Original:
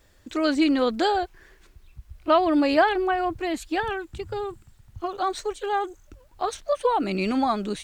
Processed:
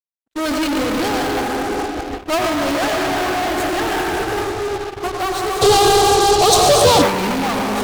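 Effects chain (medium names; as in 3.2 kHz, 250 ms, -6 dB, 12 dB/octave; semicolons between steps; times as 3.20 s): plate-style reverb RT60 3.6 s, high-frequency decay 0.35×, pre-delay 85 ms, DRR -1 dB; fuzz box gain 38 dB, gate -38 dBFS; 5.61–7.02 s: graphic EQ 125/500/2000/4000/8000 Hz +12/+3/-9/+9/+6 dB; gate -15 dBFS, range -58 dB; trim +1.5 dB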